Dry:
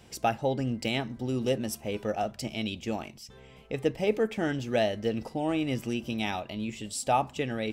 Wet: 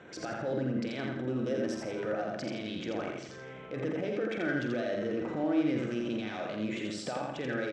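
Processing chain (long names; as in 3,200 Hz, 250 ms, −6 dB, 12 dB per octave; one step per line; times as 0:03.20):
adaptive Wiener filter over 9 samples
low-shelf EQ 280 Hz −11.5 dB
downward compressor 3 to 1, threshold −40 dBFS, peak gain reduction 14 dB
transient designer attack −7 dB, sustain +8 dB
brickwall limiter −35 dBFS, peak gain reduction 9.5 dB
loudspeaker in its box 110–6,100 Hz, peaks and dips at 160 Hz +4 dB, 320 Hz +7 dB, 540 Hz +4 dB, 850 Hz −7 dB, 1,500 Hz +8 dB, 2,800 Hz −7 dB
double-tracking delay 47 ms −9 dB
repeating echo 84 ms, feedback 39%, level −3 dB
level +7 dB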